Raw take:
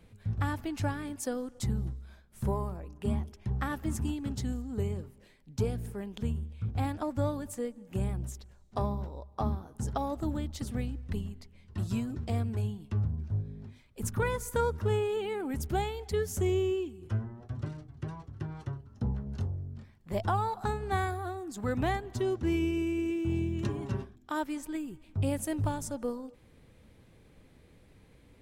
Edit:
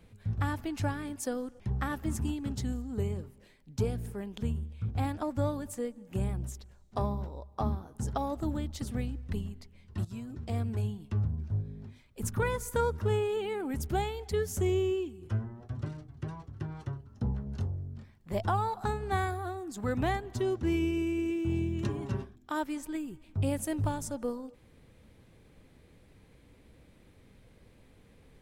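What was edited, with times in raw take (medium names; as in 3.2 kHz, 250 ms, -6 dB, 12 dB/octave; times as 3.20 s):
1.60–3.40 s: delete
11.85–12.50 s: fade in, from -13.5 dB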